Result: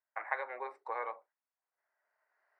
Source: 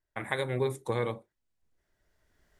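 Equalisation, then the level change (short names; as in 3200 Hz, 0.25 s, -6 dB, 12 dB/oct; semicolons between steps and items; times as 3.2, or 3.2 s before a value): running mean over 13 samples; HPF 730 Hz 24 dB/oct; air absorption 160 m; +3.0 dB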